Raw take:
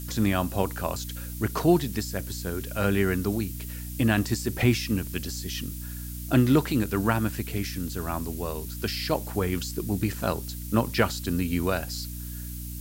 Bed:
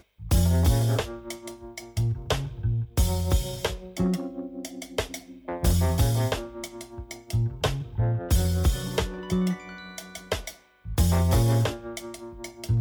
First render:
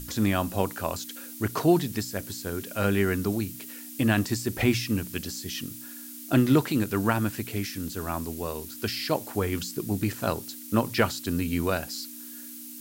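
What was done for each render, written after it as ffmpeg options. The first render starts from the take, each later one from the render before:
-af "bandreject=f=60:t=h:w=6,bandreject=f=120:t=h:w=6,bandreject=f=180:t=h:w=6"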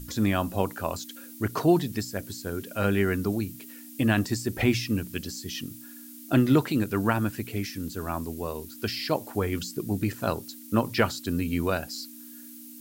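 -af "afftdn=nr=6:nf=-42"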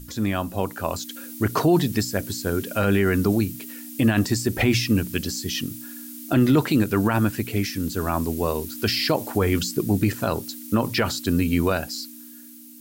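-af "dynaudnorm=f=110:g=17:m=3.76,alimiter=limit=0.335:level=0:latency=1:release=36"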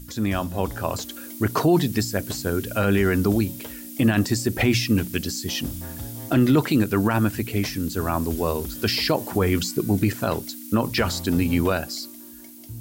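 -filter_complex "[1:a]volume=0.2[s0];[0:a][s0]amix=inputs=2:normalize=0"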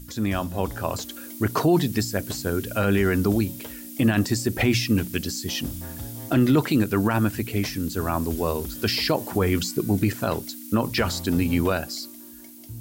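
-af "volume=0.891"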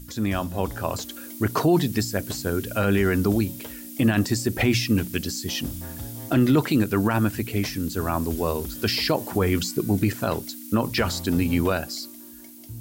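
-af anull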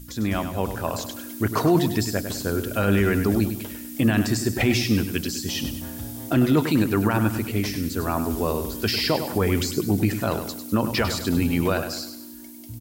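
-af "aecho=1:1:100|200|300|400|500:0.355|0.149|0.0626|0.0263|0.011"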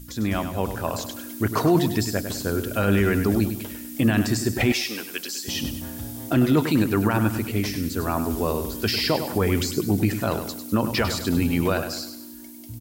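-filter_complex "[0:a]asettb=1/sr,asplit=3[s0][s1][s2];[s0]atrim=end=4.724[s3];[s1]atrim=start=4.72:end=5.48,asetpts=PTS-STARTPTS,afade=t=in:d=0.004:c=qsin,afade=t=out:st=0.756:d=0.004:c=qsin,highpass=560[s4];[s2]atrim=start=5.476[s5];[s3][s4]acrossfade=d=0.004:c1=hsin:c2=qsin[s6];[s6][s5]acrossfade=d=0.004:c1=qsin:c2=hsin"

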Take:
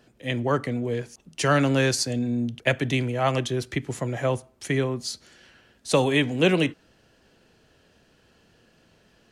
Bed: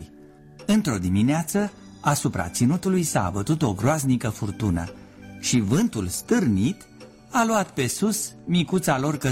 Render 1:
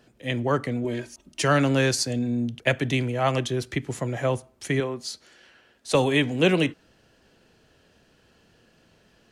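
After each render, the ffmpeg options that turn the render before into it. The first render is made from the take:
-filter_complex "[0:a]asettb=1/sr,asplit=3[s0][s1][s2];[s0]atrim=end=0.844[s3];[s1]atrim=start=0.84:end=1.42,asetpts=PTS-STARTPTS,afade=t=in:d=0.004:c=qsin,afade=t=out:st=0.576:d=0.004:c=qsin,aecho=1:1:3.2:0.71,atrim=end_sample=25578[s4];[s2]atrim=start=1.416[s5];[s3][s4]acrossfade=d=0.004:c1=hsin:c2=qsin[s6];[s6][s5]acrossfade=d=0.004:c1=qsin:c2=hsin,asettb=1/sr,asplit=3[s7][s8][s9];[s7]atrim=end=4.804[s10];[s8]atrim=start=4.8:end=5.95,asetpts=PTS-STARTPTS,afade=t=in:d=0.004:c=qsin,afade=t=out:st=1.146:d=0.004:c=qsin,bass=f=250:g=-9,treble=f=4000:g=-3[s11];[s9]atrim=start=5.946[s12];[s10][s11]acrossfade=d=0.004:c1=hsin:c2=qsin[s13];[s13][s12]acrossfade=d=0.004:c1=qsin:c2=hsin"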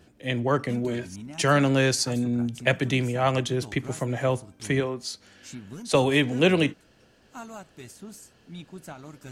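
-filter_complex "[1:a]volume=0.1[s0];[0:a][s0]amix=inputs=2:normalize=0"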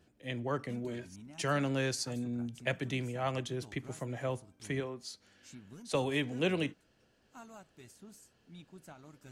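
-af "volume=0.282"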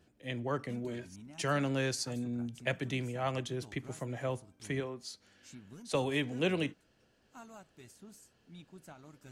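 -af anull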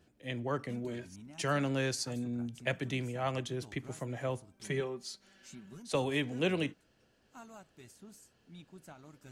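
-filter_complex "[0:a]asettb=1/sr,asplit=3[s0][s1][s2];[s0]atrim=end=4.544[s3];[s1]atrim=start=4.54:end=5.78,asetpts=PTS-STARTPTS,afade=t=in:d=0.004:c=qsin,afade=t=out:st=1.236:d=0.004:c=qsin,aecho=1:1:5.2:0.65,atrim=end_sample=54684[s4];[s2]atrim=start=5.776[s5];[s3][s4]acrossfade=d=0.004:c1=hsin:c2=qsin[s6];[s6][s5]acrossfade=d=0.004:c1=qsin:c2=hsin"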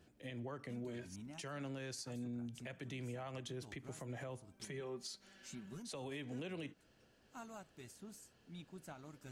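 -af "acompressor=threshold=0.0112:ratio=2,alimiter=level_in=4.47:limit=0.0631:level=0:latency=1:release=155,volume=0.224"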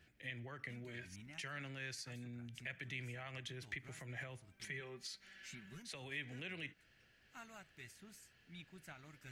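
-af "equalizer=f=250:t=o:w=1:g=-7,equalizer=f=500:t=o:w=1:g=-6,equalizer=f=1000:t=o:w=1:g=-7,equalizer=f=2000:t=o:w=1:g=11,equalizer=f=8000:t=o:w=1:g=-4"

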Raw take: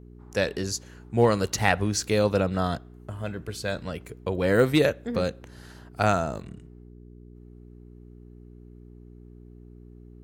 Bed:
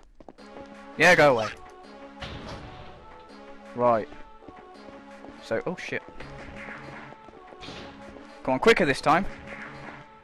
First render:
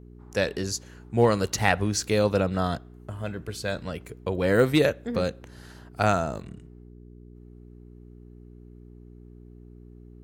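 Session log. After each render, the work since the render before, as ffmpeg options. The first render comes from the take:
-af anull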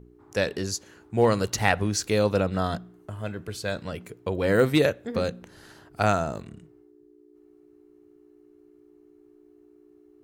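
-af "bandreject=f=60:t=h:w=4,bandreject=f=120:t=h:w=4,bandreject=f=180:t=h:w=4,bandreject=f=240:t=h:w=4"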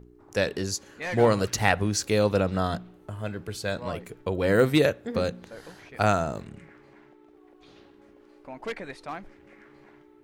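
-filter_complex "[1:a]volume=0.158[s0];[0:a][s0]amix=inputs=2:normalize=0"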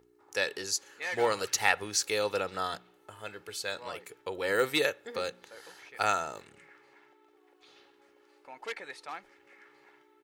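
-af "highpass=f=1300:p=1,aecho=1:1:2.3:0.39"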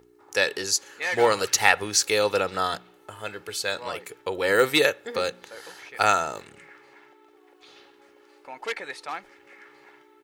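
-af "volume=2.37,alimiter=limit=0.891:level=0:latency=1"

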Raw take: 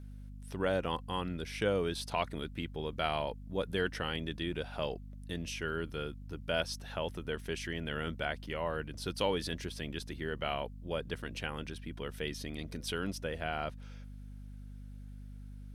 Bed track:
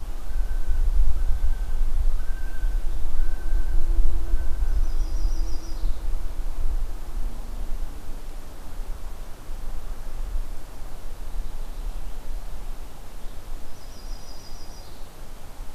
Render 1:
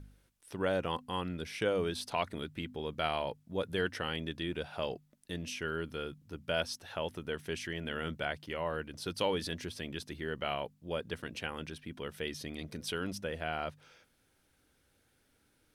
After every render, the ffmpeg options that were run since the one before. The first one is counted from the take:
-af "bandreject=f=50:t=h:w=4,bandreject=f=100:t=h:w=4,bandreject=f=150:t=h:w=4,bandreject=f=200:t=h:w=4,bandreject=f=250:t=h:w=4"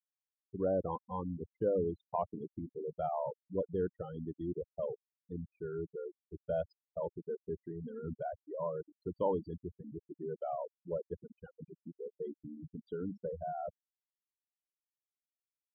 -af "afftfilt=real='re*gte(hypot(re,im),0.0501)':imag='im*gte(hypot(re,im),0.0501)':win_size=1024:overlap=0.75,firequalizer=gain_entry='entry(120,0);entry(910,1);entry(1800,-27);entry(6400,-23);entry(9300,-21)':delay=0.05:min_phase=1"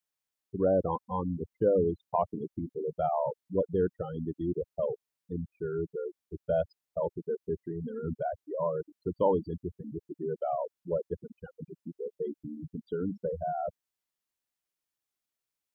-af "volume=2.11"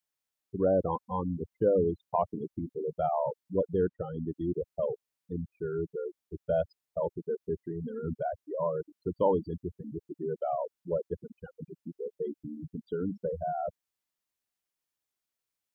-filter_complex "[0:a]asettb=1/sr,asplit=3[s0][s1][s2];[s0]atrim=end=3.874[s3];[s1]atrim=start=3.87:end=4.31,asetpts=PTS-STARTPTS,afade=t=in:d=0.004:c=qsin,afade=t=out:st=0.436:d=0.004:c=qsin,lowpass=f=2100:p=1[s4];[s2]atrim=start=4.306[s5];[s3][s4]acrossfade=d=0.004:c1=hsin:c2=qsin[s6];[s6][s5]acrossfade=d=0.004:c1=qsin:c2=hsin"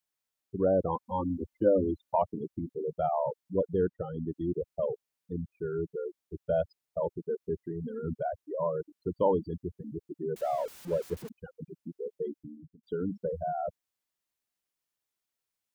-filter_complex "[0:a]asettb=1/sr,asplit=3[s0][s1][s2];[s0]atrim=end=1.054[s3];[s1]atrim=start=1.05:end=2.22,asetpts=PTS-STARTPTS,afade=t=in:d=0.004:c=qsin,afade=t=out:st=1.166:d=0.004:c=qsin,aecho=1:1:3.4:0.87,atrim=end_sample=51597[s4];[s2]atrim=start=2.216[s5];[s3][s4]acrossfade=d=0.004:c1=hsin:c2=qsin[s6];[s6][s5]acrossfade=d=0.004:c1=qsin:c2=hsin,asettb=1/sr,asplit=3[s7][s8][s9];[s7]atrim=end=10.364[s10];[s8]atrim=start=10.36:end=11.29,asetpts=PTS-STARTPTS,afade=t=in:d=0.004:c=qsin,afade=t=out:st=0.926:d=0.004:c=qsin,aeval=exprs='val(0)+0.5*0.0075*sgn(val(0))':c=same[s11];[s9]atrim=start=11.286[s12];[s10][s11]acrossfade=d=0.004:c1=hsin:c2=qsin[s13];[s13][s12]acrossfade=d=0.004:c1=qsin:c2=hsin,asplit=2[s14][s15];[s14]atrim=end=12.83,asetpts=PTS-STARTPTS,afade=t=out:st=12.23:d=0.6[s16];[s15]atrim=start=12.83,asetpts=PTS-STARTPTS,afade=t=in:d=0.004:c=hsin[s17];[s16][s17]concat=n=2:v=0:a=1"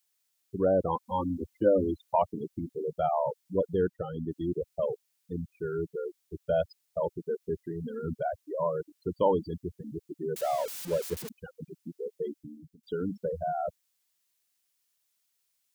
-af "highshelf=f=2000:g=12"

